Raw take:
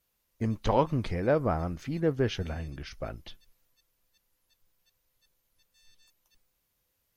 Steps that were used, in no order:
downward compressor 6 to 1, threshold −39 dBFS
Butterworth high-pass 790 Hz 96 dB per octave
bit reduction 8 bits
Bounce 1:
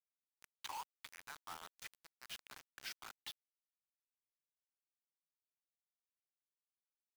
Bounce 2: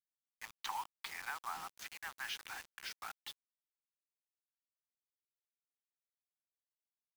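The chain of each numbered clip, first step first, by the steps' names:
downward compressor, then Butterworth high-pass, then bit reduction
Butterworth high-pass, then downward compressor, then bit reduction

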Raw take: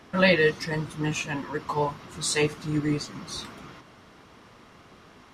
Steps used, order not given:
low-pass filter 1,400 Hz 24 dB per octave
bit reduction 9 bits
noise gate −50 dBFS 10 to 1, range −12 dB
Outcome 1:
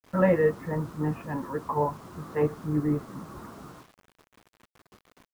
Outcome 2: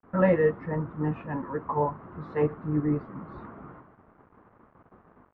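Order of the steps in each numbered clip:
low-pass filter, then noise gate, then bit reduction
noise gate, then bit reduction, then low-pass filter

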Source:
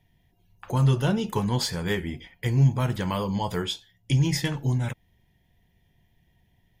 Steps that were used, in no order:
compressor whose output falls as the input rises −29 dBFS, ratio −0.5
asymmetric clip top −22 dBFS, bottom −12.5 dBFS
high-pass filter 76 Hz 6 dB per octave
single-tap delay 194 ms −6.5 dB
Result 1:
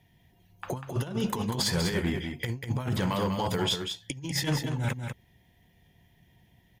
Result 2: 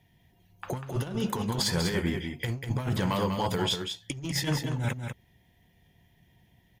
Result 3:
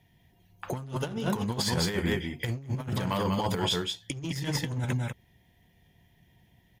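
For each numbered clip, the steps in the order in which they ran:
high-pass filter, then compressor whose output falls as the input rises, then asymmetric clip, then single-tap delay
high-pass filter, then asymmetric clip, then compressor whose output falls as the input rises, then single-tap delay
single-tap delay, then asymmetric clip, then high-pass filter, then compressor whose output falls as the input rises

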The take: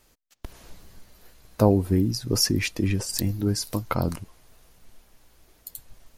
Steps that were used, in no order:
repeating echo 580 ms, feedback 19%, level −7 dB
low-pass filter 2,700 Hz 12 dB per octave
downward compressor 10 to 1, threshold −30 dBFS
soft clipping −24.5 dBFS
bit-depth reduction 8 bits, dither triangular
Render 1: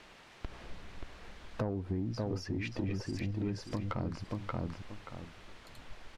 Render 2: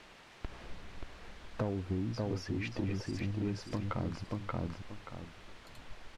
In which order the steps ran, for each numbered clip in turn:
repeating echo, then bit-depth reduction, then downward compressor, then low-pass filter, then soft clipping
repeating echo, then downward compressor, then soft clipping, then bit-depth reduction, then low-pass filter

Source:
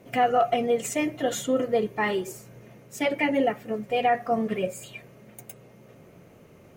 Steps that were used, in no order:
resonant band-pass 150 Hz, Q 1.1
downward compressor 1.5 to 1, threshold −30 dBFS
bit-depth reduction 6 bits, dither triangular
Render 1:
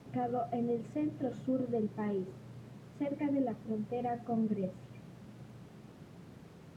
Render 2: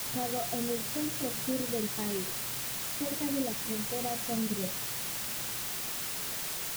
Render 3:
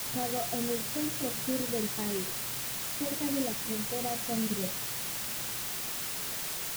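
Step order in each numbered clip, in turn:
bit-depth reduction, then resonant band-pass, then downward compressor
resonant band-pass, then bit-depth reduction, then downward compressor
resonant band-pass, then downward compressor, then bit-depth reduction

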